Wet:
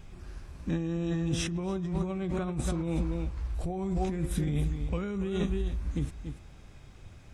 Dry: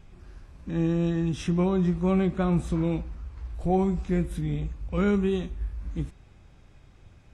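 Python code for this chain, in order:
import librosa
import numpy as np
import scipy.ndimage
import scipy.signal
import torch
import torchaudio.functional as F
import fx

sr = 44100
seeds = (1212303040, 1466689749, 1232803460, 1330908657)

p1 = x + fx.echo_single(x, sr, ms=284, db=-11.5, dry=0)
p2 = fx.over_compress(p1, sr, threshold_db=-29.0, ratio=-1.0)
p3 = fx.high_shelf(p2, sr, hz=5300.0, db=6.0)
y = p3 * librosa.db_to_amplitude(-1.0)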